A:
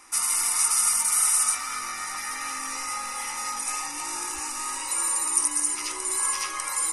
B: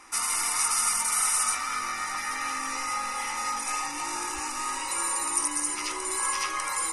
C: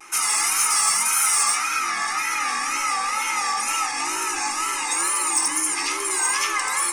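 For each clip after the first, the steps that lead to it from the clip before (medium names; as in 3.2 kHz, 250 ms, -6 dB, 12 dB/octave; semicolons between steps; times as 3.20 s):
low-pass 4 kHz 6 dB/octave; trim +3 dB
wow and flutter 120 cents; saturation -19 dBFS, distortion -19 dB; reverberation RT60 1.0 s, pre-delay 3 ms, DRR 4 dB; trim +5.5 dB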